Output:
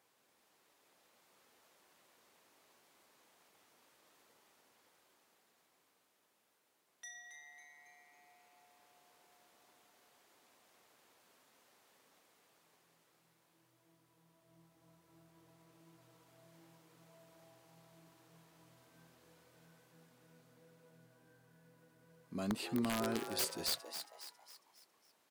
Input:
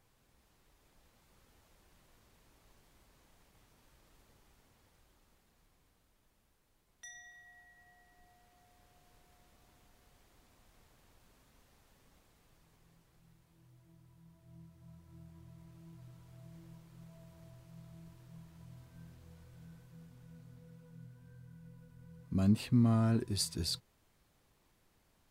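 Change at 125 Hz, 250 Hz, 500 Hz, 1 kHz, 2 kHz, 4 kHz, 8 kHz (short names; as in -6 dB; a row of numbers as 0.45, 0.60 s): -17.0, -8.0, +0.5, +1.5, +3.5, -1.0, 0.0 dB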